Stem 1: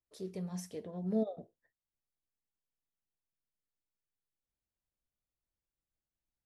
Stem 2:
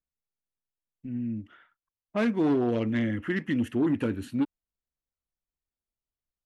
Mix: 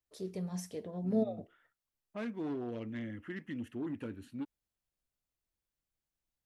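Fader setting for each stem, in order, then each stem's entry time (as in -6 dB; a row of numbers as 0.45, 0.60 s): +1.5, -13.5 dB; 0.00, 0.00 s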